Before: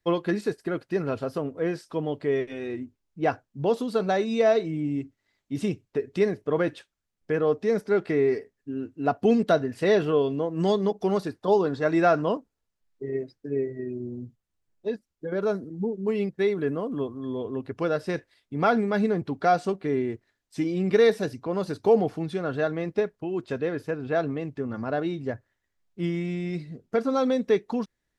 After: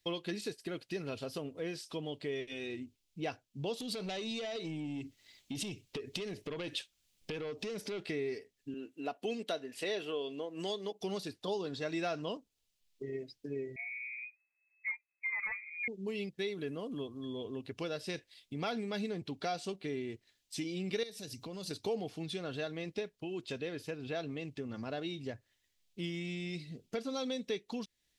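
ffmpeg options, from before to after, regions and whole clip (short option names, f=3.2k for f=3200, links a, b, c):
-filter_complex "[0:a]asettb=1/sr,asplit=3[a][b][c];[a]atrim=end=3.804[d];[b]atrim=start=3.8:end=8,asetpts=PTS-STARTPTS,afade=t=in:d=0.004:c=qsin,afade=t=out:st=4.196:d=0.004:c=qsin,acompressor=threshold=-34dB:ratio=4:attack=3.2:release=140:knee=1:detection=peak,aeval=exprs='0.0531*sin(PI/2*1.58*val(0)/0.0531)':c=same[e];[c]atrim=start=7.996[f];[d][e]acrossfade=d=0.004:c1=hsin:c2=qsin[g];[g][f]acrossfade=d=0.004:c1=qsin:c2=hsin,asettb=1/sr,asplit=3[h][i][j];[h]atrim=end=8.744[k];[i]atrim=start=8.74:end=11.01,asetpts=PTS-STARTPTS,afade=t=in:d=0.004:c=qsin,afade=t=out:st=2.266:d=0.004:c=qsin,highpass=310,equalizer=f=5k:t=o:w=1:g=-5[l];[j]atrim=start=11.006[m];[k][l]acrossfade=d=0.004:c1=hsin:c2=qsin[n];[n][m]acrossfade=d=0.004:c1=qsin:c2=hsin,asettb=1/sr,asplit=3[o][p][q];[o]atrim=end=13.764[r];[p]atrim=start=13.76:end=15.88,asetpts=PTS-STARTPTS,afade=t=in:d=0.004:c=qsin,afade=t=out:st=2.116:d=0.004:c=qsin,lowshelf=f=410:t=q:w=3:g=-8.5,aeval=exprs='0.0708*(abs(mod(val(0)/0.0708+3,4)-2)-1)':c=same,lowpass=f=2.2k:t=q:w=0.5098,lowpass=f=2.2k:t=q:w=0.6013,lowpass=f=2.2k:t=q:w=0.9,lowpass=f=2.2k:t=q:w=2.563,afreqshift=-2600[s];[q]atrim=start=15.876[t];[r][s]acrossfade=d=0.004:c1=hsin:c2=qsin[u];[u][t]acrossfade=d=0.004:c1=qsin:c2=hsin,asettb=1/sr,asplit=3[v][w][x];[v]atrim=end=21.034[y];[w]atrim=start=21.03:end=21.71,asetpts=PTS-STARTPTS,afade=t=in:d=0.004:c=qsin,afade=t=out:st=0.676:d=0.004:c=qsin,bass=f=250:g=5,treble=f=4k:g=8,acompressor=threshold=-39dB:ratio=2.5:attack=3.2:release=140:knee=1:detection=peak[z];[x]atrim=start=21.706[aa];[y][z]acrossfade=d=0.004:c1=hsin:c2=qsin[ab];[ab][aa]acrossfade=d=0.004:c1=qsin:c2=hsin,highshelf=f=2.1k:t=q:w=1.5:g=11,acompressor=threshold=-39dB:ratio=2,volume=-3.5dB"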